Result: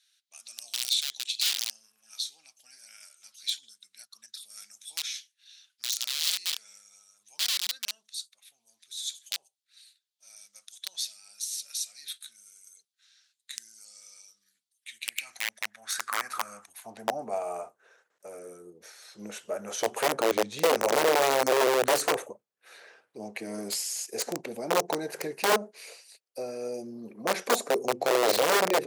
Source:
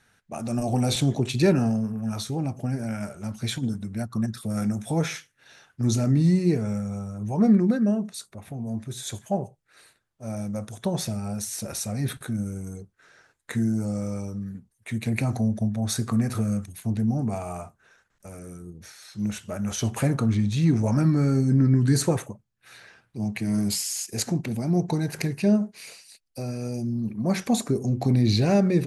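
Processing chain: integer overflow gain 16 dB; high-pass sweep 3.8 kHz -> 470 Hz, 14.67–17.56 s; trim -3.5 dB

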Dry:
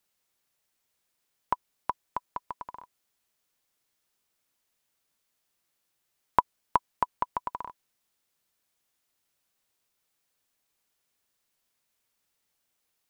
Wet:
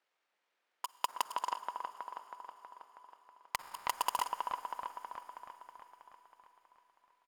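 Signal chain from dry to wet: block-companded coder 3-bit; level-controlled noise filter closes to 2.1 kHz, open at -31.5 dBFS; high-pass 470 Hz 12 dB/octave; treble shelf 4.3 kHz +6.5 dB; band-stop 1.1 kHz, Q 30; compression 20:1, threshold -30 dBFS, peak gain reduction 17 dB; tempo 1.8×; feedback echo behind a low-pass 321 ms, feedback 61%, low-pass 2 kHz, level -4.5 dB; on a send at -15 dB: reverberation RT60 4.9 s, pre-delay 42 ms; on the sum: transformer saturation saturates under 3.6 kHz; trim +4.5 dB

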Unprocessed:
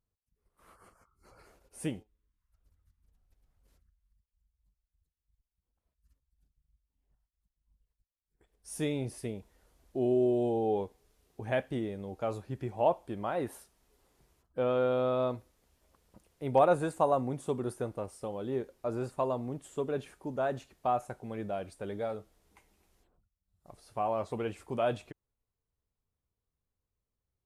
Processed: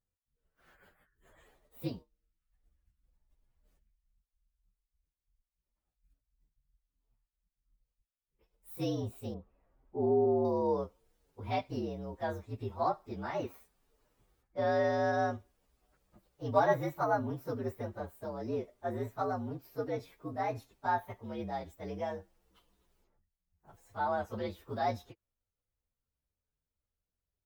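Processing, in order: frequency axis rescaled in octaves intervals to 117%; 9.34–10.45 s: low-pass 1.4 kHz 12 dB/octave

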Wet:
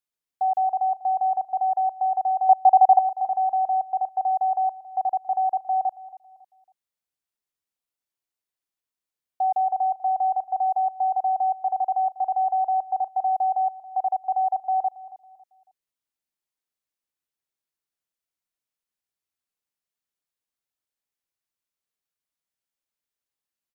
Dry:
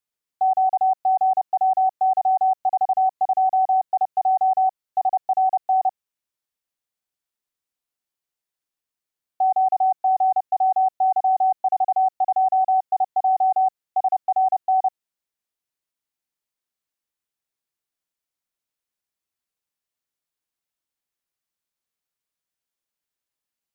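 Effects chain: 2.49–2.99 s: peaking EQ 790 Hz +10 dB 1.5 oct; on a send: feedback delay 276 ms, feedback 33%, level -18 dB; on the sum: trim -3.5 dB

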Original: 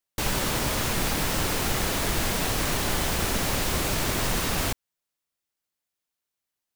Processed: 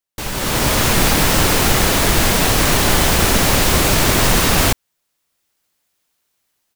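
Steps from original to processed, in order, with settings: level rider gain up to 16 dB

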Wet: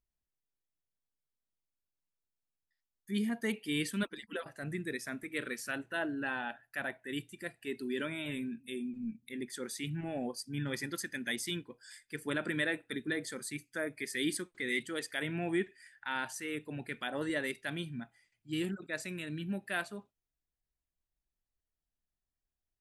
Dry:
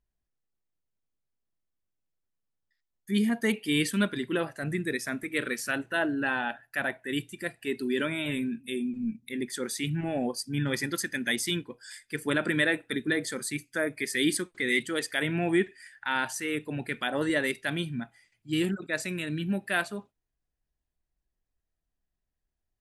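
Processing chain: 4.03–4.46 s: harmonic-percussive separation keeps percussive; trim -7.5 dB

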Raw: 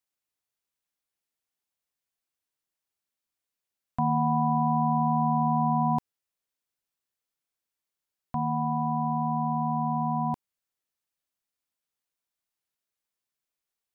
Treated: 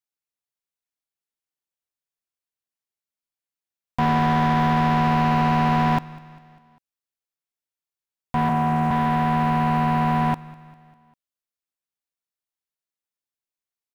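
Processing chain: tracing distortion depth 0.094 ms; 8.49–8.91 s: elliptic band-pass 150–920 Hz; waveshaping leveller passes 3; on a send: feedback delay 199 ms, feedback 54%, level -20.5 dB

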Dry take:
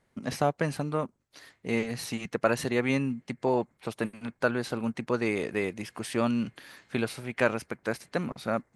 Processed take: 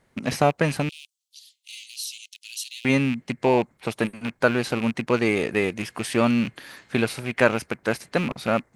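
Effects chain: rattle on loud lows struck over -35 dBFS, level -28 dBFS; 0.89–2.85 s: steep high-pass 3 kHz 48 dB/octave; trim +6.5 dB

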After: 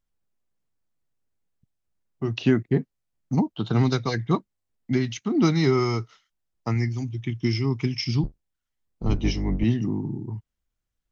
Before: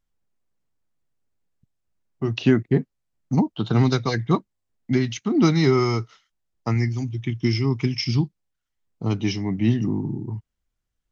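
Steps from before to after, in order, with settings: 8.23–9.64 s: octave divider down 2 oct, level +2 dB; trim -2.5 dB

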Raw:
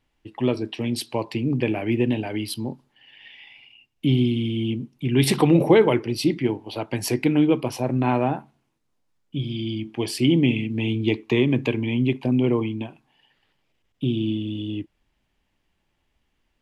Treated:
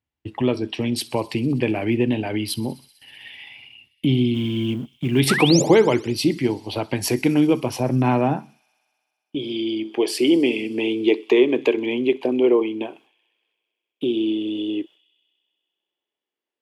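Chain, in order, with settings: 4.34–5.20 s: companding laws mixed up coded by A; high-pass sweep 75 Hz -> 400 Hz, 7.53–9.43 s; dynamic bell 110 Hz, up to -6 dB, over -34 dBFS, Q 1.2; in parallel at -1 dB: compression, threshold -30 dBFS, peak gain reduction 18 dB; 5.29–5.62 s: on the sum: painted sound rise 1.2–7.6 kHz -23 dBFS; gate with hold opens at -39 dBFS; on a send: feedback echo behind a high-pass 64 ms, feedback 83%, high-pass 3.6 kHz, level -20 dB

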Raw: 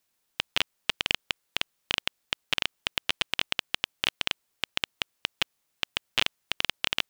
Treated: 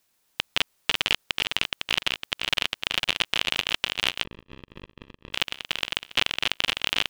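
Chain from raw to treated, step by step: backward echo that repeats 253 ms, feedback 61%, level -5 dB; in parallel at +2.5 dB: peak limiter -14 dBFS, peak gain reduction 11 dB; 4.24–5.33 s: on the sum: boxcar filter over 60 samples; trim -1.5 dB

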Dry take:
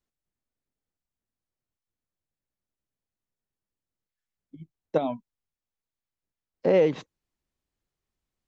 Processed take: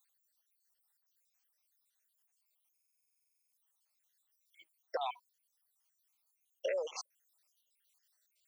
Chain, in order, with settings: random holes in the spectrogram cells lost 69%; inverse Chebyshev high-pass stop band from 220 Hz, stop band 50 dB; compression 6:1, threshold -38 dBFS, peak gain reduction 15 dB; tilt EQ +4 dB/octave; buffer glitch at 2.73 s, samples 2048, times 16; trim +7 dB

